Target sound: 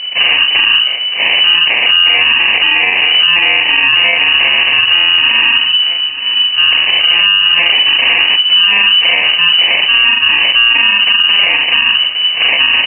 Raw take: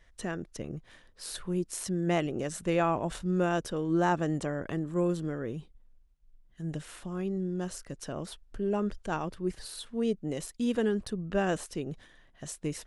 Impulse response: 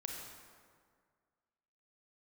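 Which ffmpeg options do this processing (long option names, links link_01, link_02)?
-filter_complex "[0:a]afftfilt=real='re':imag='-im':win_size=4096:overlap=0.75,lowshelf=frequency=130:gain=3,aecho=1:1:4.2:0.69,acompressor=threshold=-38dB:ratio=12,asplit=2[link_01][link_02];[link_02]asetrate=22050,aresample=44100,atempo=2,volume=-1dB[link_03];[link_01][link_03]amix=inputs=2:normalize=0,bandreject=frequency=50.02:width_type=h:width=4,bandreject=frequency=100.04:width_type=h:width=4,bandreject=frequency=150.06:width_type=h:width=4,bandreject=frequency=200.08:width_type=h:width=4,bandreject=frequency=250.1:width_type=h:width=4,bandreject=frequency=300.12:width_type=h:width=4,bandreject=frequency=350.14:width_type=h:width=4,bandreject=frequency=400.16:width_type=h:width=4,bandreject=frequency=450.18:width_type=h:width=4,bandreject=frequency=500.2:width_type=h:width=4,bandreject=frequency=550.22:width_type=h:width=4,bandreject=frequency=600.24:width_type=h:width=4,bandreject=frequency=650.26:width_type=h:width=4,bandreject=frequency=700.28:width_type=h:width=4,bandreject=frequency=750.3:width_type=h:width=4,bandreject=frequency=800.32:width_type=h:width=4,bandreject=frequency=850.34:width_type=h:width=4,bandreject=frequency=900.36:width_type=h:width=4,bandreject=frequency=950.38:width_type=h:width=4,bandreject=frequency=1000.4:width_type=h:width=4,bandreject=frequency=1050.42:width_type=h:width=4,bandreject=frequency=1100.44:width_type=h:width=4,bandreject=frequency=1150.46:width_type=h:width=4,bandreject=frequency=1200.48:width_type=h:width=4,bandreject=frequency=1250.5:width_type=h:width=4,bandreject=frequency=1300.52:width_type=h:width=4,bandreject=frequency=1350.54:width_type=h:width=4,bandreject=frequency=1400.56:width_type=h:width=4,bandreject=frequency=1450.58:width_type=h:width=4,bandreject=frequency=1500.6:width_type=h:width=4,bandreject=frequency=1550.62:width_type=h:width=4,bandreject=frequency=1600.64:width_type=h:width=4,bandreject=frequency=1650.66:width_type=h:width=4,aresample=16000,acrusher=samples=10:mix=1:aa=0.000001,aresample=44100,aecho=1:1:911|1822|2733|3644:0.133|0.06|0.027|0.0122,lowpass=frequency=2600:width_type=q:width=0.5098,lowpass=frequency=2600:width_type=q:width=0.6013,lowpass=frequency=2600:width_type=q:width=0.9,lowpass=frequency=2600:width_type=q:width=2.563,afreqshift=-3000,alimiter=level_in=36dB:limit=-1dB:release=50:level=0:latency=1" -ar 12000 -c:a libmp3lame -b:a 64k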